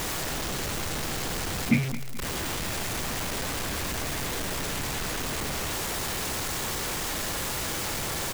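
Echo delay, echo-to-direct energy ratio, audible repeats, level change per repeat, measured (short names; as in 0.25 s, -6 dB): 0.214 s, -14.0 dB, 2, -8.0 dB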